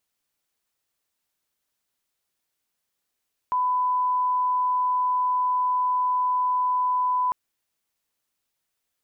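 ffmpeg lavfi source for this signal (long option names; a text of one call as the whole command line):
ffmpeg -f lavfi -i "sine=frequency=1000:duration=3.8:sample_rate=44100,volume=-1.94dB" out.wav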